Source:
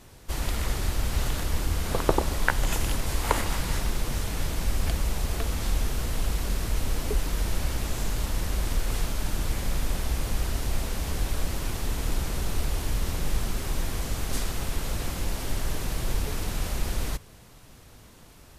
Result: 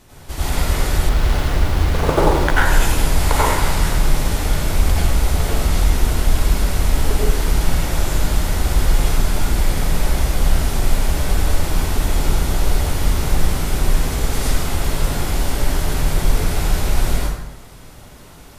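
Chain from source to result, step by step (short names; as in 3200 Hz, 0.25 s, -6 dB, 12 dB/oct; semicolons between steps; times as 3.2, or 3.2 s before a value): plate-style reverb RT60 1 s, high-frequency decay 0.6×, pre-delay 75 ms, DRR -8 dB; 1.09–2.65 running maximum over 5 samples; gain +1.5 dB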